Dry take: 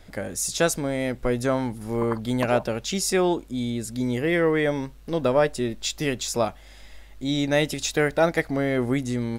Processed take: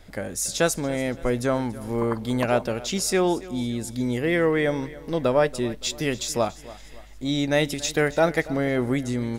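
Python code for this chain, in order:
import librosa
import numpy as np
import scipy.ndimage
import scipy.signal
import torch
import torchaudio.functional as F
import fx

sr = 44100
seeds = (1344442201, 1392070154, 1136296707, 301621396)

y = fx.echo_feedback(x, sr, ms=283, feedback_pct=43, wet_db=-18.5)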